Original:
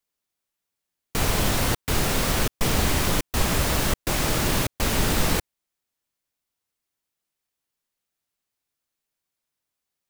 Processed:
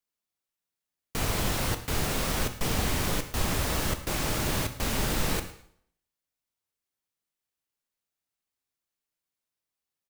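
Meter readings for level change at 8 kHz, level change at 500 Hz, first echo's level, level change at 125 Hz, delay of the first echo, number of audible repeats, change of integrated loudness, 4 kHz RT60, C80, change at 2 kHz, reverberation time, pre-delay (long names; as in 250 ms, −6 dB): −5.5 dB, −5.5 dB, −17.5 dB, −5.0 dB, 110 ms, 2, −5.5 dB, 0.55 s, 13.5 dB, −5.5 dB, 0.60 s, 7 ms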